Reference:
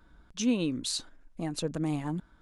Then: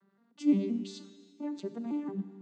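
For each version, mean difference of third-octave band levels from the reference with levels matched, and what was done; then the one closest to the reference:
9.5 dB: vocoder with an arpeggio as carrier minor triad, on G3, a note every 173 ms
four-comb reverb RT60 1.8 s, combs from 28 ms, DRR 11.5 dB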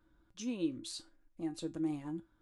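3.5 dB: parametric band 320 Hz +8.5 dB 0.37 octaves
tuned comb filter 110 Hz, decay 0.2 s, harmonics odd, mix 70%
level −4.5 dB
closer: second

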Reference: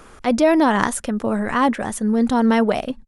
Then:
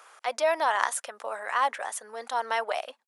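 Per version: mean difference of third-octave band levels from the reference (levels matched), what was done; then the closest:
8.5 dB: high-pass filter 630 Hz 24 dB per octave
level −5 dB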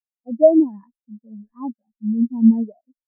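18.5 dB: every bin expanded away from the loudest bin 4 to 1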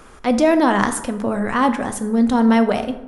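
3.0 dB: dense smooth reverb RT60 0.99 s, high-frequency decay 0.5×, DRR 8.5 dB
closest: third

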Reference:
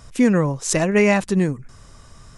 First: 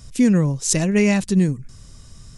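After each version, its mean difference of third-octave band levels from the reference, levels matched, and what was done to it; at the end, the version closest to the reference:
3.0 dB: drawn EQ curve 180 Hz 0 dB, 650 Hz −10 dB, 1,200 Hz −12 dB, 4,500 Hz 0 dB
level +3 dB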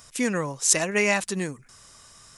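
5.0 dB: spectral tilt +3 dB per octave
level −4.5 dB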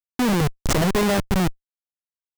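12.0 dB: comparator with hysteresis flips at −17.5 dBFS
level +1.5 dB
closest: first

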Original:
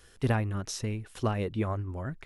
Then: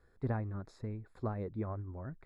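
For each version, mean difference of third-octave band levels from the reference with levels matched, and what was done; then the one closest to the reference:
4.0 dB: moving average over 15 samples
level −7.5 dB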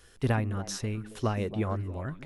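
2.0 dB: echo through a band-pass that steps 136 ms, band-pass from 220 Hz, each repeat 1.4 octaves, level −7.5 dB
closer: second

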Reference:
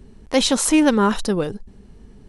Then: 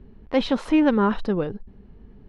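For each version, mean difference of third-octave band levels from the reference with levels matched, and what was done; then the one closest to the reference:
3.0 dB: high-frequency loss of the air 350 metres
level −2 dB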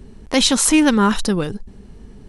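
2.0 dB: dynamic equaliser 550 Hz, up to −7 dB, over −30 dBFS, Q 0.89
level +4.5 dB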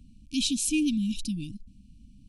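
8.5 dB: linear-phase brick-wall band-stop 320–2,300 Hz
level −7.5 dB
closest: second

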